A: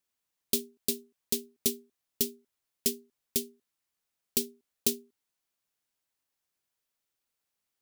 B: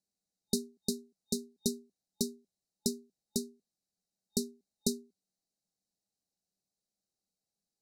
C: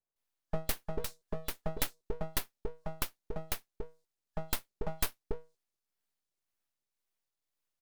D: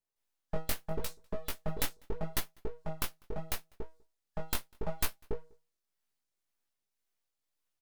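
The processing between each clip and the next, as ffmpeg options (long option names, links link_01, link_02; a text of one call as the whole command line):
ffmpeg -i in.wav -af "lowpass=8600,afftfilt=real='re*(1-between(b*sr/4096,850,3700))':imag='im*(1-between(b*sr/4096,850,3700))':win_size=4096:overlap=0.75,equalizer=frequency=190:width=3.7:gain=13.5,volume=-2dB" out.wav
ffmpeg -i in.wav -filter_complex "[0:a]acrossover=split=230|1100[link_01][link_02][link_03];[link_03]adelay=160[link_04];[link_01]adelay=440[link_05];[link_05][link_02][link_04]amix=inputs=3:normalize=0,acrossover=split=530[link_06][link_07];[link_06]aeval=exprs='val(0)*(1-0.5/2+0.5/2*cos(2*PI*1.9*n/s))':channel_layout=same[link_08];[link_07]aeval=exprs='val(0)*(1-0.5/2-0.5/2*cos(2*PI*1.9*n/s))':channel_layout=same[link_09];[link_08][link_09]amix=inputs=2:normalize=0,aeval=exprs='abs(val(0))':channel_layout=same,volume=6dB" out.wav
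ffmpeg -i in.wav -filter_complex "[0:a]flanger=delay=15.5:depth=5.5:speed=0.78,asplit=2[link_01][link_02];[link_02]adelay=198.3,volume=-29dB,highshelf=frequency=4000:gain=-4.46[link_03];[link_01][link_03]amix=inputs=2:normalize=0,volume=3.5dB" out.wav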